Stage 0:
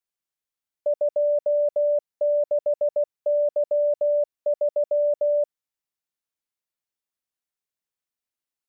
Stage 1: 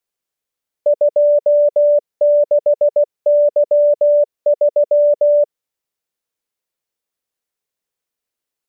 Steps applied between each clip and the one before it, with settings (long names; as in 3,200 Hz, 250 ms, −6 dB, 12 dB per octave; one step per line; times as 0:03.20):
parametric band 470 Hz +6.5 dB 0.68 octaves
level +6 dB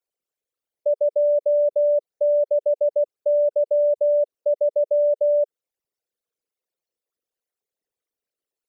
spectral envelope exaggerated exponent 3
level −6.5 dB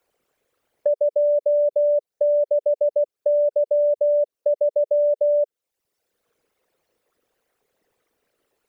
multiband upward and downward compressor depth 70%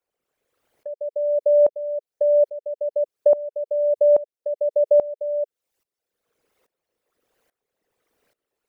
tremolo with a ramp in dB swelling 1.2 Hz, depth 20 dB
level +6 dB